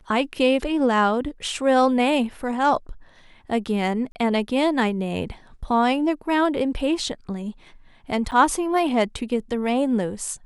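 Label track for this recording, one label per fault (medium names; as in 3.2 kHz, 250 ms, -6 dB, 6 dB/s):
4.120000	4.150000	dropout 30 ms
8.310000	8.320000	dropout 8.8 ms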